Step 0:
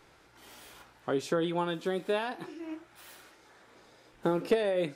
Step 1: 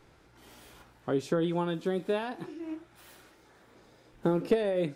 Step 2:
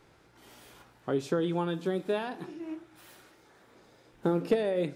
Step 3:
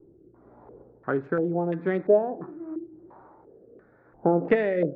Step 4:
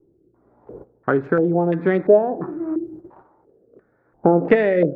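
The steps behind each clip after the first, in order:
low shelf 380 Hz +9.5 dB; thin delay 0.286 s, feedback 76%, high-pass 5500 Hz, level -20 dB; gain -3.5 dB
low shelf 92 Hz -7 dB; on a send at -19.5 dB: reverb RT60 1.1 s, pre-delay 3 ms
Wiener smoothing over 15 samples; rotary speaker horn 0.85 Hz; stepped low-pass 2.9 Hz 360–2000 Hz; gain +4.5 dB
gate -48 dBFS, range -16 dB; in parallel at +2 dB: compressor, threshold -32 dBFS, peak gain reduction 16.5 dB; on the sum: gain +4.5 dB

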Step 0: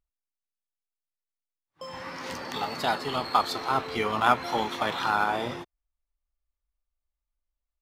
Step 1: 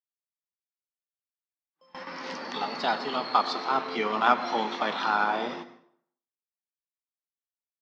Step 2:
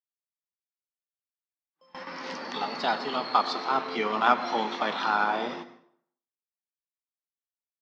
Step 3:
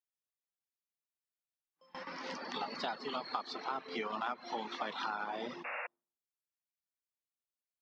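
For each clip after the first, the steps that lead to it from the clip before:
elliptic band-pass 190–5400 Hz, stop band 40 dB; gate with hold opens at -29 dBFS; plate-style reverb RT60 0.64 s, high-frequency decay 0.75×, pre-delay 80 ms, DRR 13.5 dB
nothing audible
reverb removal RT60 0.63 s; compressor 6:1, threshold -30 dBFS, peak gain reduction 14 dB; painted sound noise, 5.64–5.87, 470–2800 Hz -36 dBFS; gain -4.5 dB

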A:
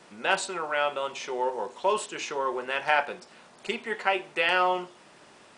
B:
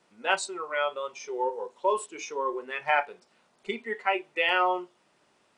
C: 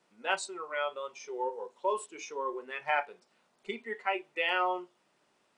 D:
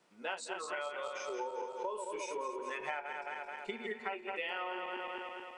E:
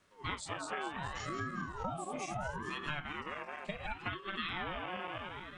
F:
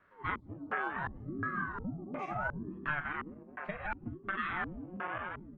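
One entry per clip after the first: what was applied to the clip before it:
spectral noise reduction 13 dB; notch 1700 Hz, Q 28
bell 79 Hz -15 dB 0.42 oct; gain -5 dB
regenerating reverse delay 0.108 s, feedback 75%, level -7 dB; compressor 6:1, threshold -37 dBFS, peak gain reduction 13 dB; gain +1 dB
ring modulator with a swept carrier 470 Hz, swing 65%, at 0.7 Hz; gain +3 dB
echo 0.176 s -15.5 dB; LFO low-pass square 1.4 Hz 260–1600 Hz

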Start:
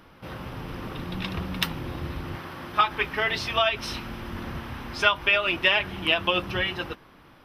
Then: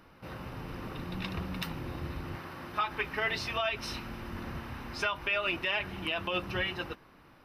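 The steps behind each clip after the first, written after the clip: limiter -15 dBFS, peak gain reduction 8 dB; notch 3300 Hz, Q 9.7; gain -5 dB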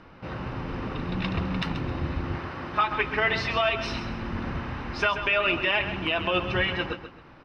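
air absorption 140 m; on a send: feedback echo 0.133 s, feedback 28%, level -10 dB; on the sum: gain +8 dB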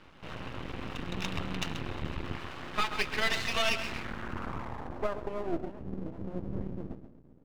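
low-pass sweep 3400 Hz -> 230 Hz, 3.62–5.87; half-wave rectifier; gain -3.5 dB

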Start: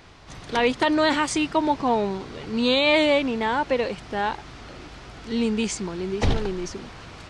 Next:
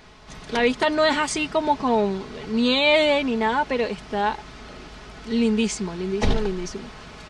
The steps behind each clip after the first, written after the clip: comb 4.7 ms, depth 49%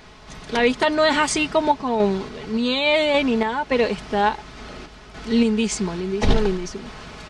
random-step tremolo; gain +4.5 dB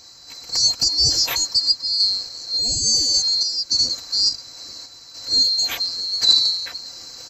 band-swap scrambler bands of 4000 Hz

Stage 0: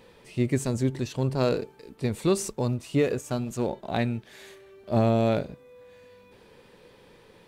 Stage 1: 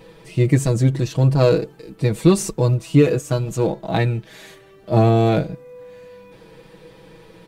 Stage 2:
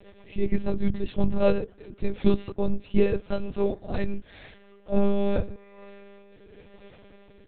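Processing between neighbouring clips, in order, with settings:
low shelf 360 Hz +5.5 dB; comb 6.2 ms, depth 83%; gain +4 dB
rotary speaker horn 8 Hz, later 0.85 Hz, at 1.72; vibrato 2.1 Hz 39 cents; monotone LPC vocoder at 8 kHz 200 Hz; gain -3.5 dB

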